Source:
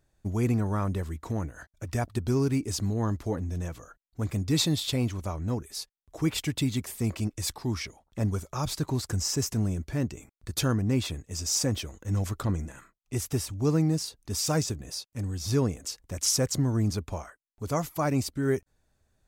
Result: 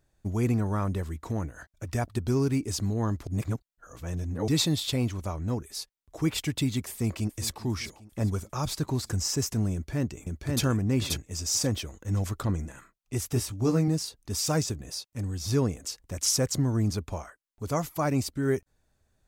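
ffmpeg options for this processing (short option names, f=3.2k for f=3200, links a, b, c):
-filter_complex "[0:a]asplit=2[a][b];[b]afade=t=in:st=6.89:d=0.01,afade=t=out:st=7.59:d=0.01,aecho=0:1:400|800|1200|1600|2000:0.149624|0.082293|0.0452611|0.0248936|0.0136915[c];[a][c]amix=inputs=2:normalize=0,asplit=2[d][e];[e]afade=t=in:st=9.73:d=0.01,afade=t=out:st=10.63:d=0.01,aecho=0:1:530|1060|1590:0.841395|0.126209|0.0189314[f];[d][f]amix=inputs=2:normalize=0,asettb=1/sr,asplit=3[g][h][i];[g]atrim=end=13.344[j];[h]atrim=start=13.34:end=13.88,asetpts=PTS-STARTPTS,afade=t=in:d=0.004:c=qsin,afade=t=out:st=0.536:d=0.004:c=qsin,asplit=2[k][l];[l]adelay=17,volume=-5dB[m];[k][m]amix=inputs=2:normalize=0,atrim=end_sample=23814[n];[i]atrim=start=13.876[o];[j][n]acrossfade=d=0.004:c1=hsin:c2=qsin[p];[p][o]acrossfade=d=0.004:c1=qsin:c2=hsin,asplit=3[q][r][s];[q]atrim=end=3.272[t];[r]atrim=start=3.268:end=4.482,asetpts=PTS-STARTPTS,areverse[u];[s]atrim=start=4.478[v];[t][u]acrossfade=d=0.004:c1=hsin:c2=hsin[w];[w][v]acrossfade=d=0.004:c1=hsin:c2=hsin"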